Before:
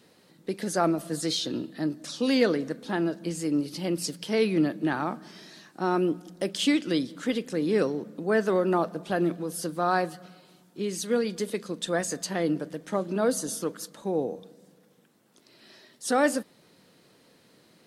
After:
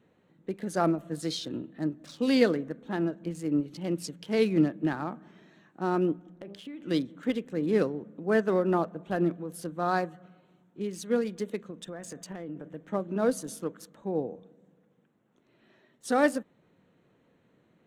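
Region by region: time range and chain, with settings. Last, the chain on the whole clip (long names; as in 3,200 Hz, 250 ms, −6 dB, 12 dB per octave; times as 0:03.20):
0:06.16–0:06.83: hum removal 66.82 Hz, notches 19 + downward compressor 8 to 1, threshold −32 dBFS + low-pass filter 3,700 Hz 6 dB per octave
0:11.70–0:12.73: notch filter 4,200 Hz, Q 8.3 + downward compressor 5 to 1, threshold −30 dBFS
whole clip: adaptive Wiener filter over 9 samples; low-shelf EQ 130 Hz +9 dB; expander for the loud parts 1.5 to 1, over −31 dBFS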